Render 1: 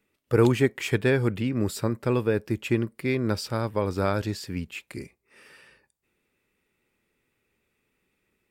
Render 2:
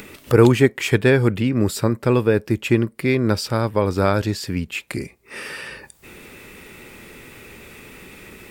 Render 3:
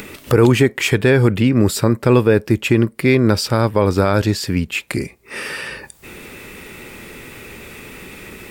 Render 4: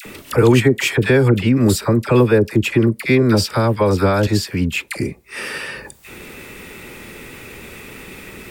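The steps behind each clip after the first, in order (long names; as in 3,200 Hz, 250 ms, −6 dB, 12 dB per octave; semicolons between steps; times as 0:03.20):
upward compression, threshold −27 dBFS; level +7 dB
brickwall limiter −8 dBFS, peak gain reduction 6.5 dB; level +5.5 dB
all-pass dispersion lows, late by 58 ms, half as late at 960 Hz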